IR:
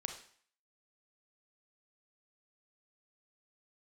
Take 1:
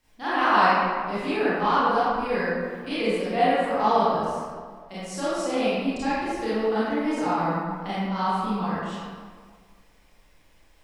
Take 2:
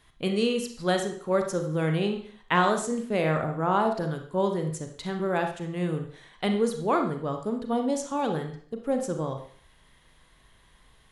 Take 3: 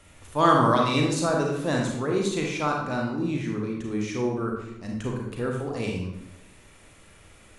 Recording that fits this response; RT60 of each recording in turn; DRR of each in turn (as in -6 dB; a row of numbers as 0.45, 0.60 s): 2; 1.7, 0.55, 0.85 s; -12.5, 4.5, -0.5 dB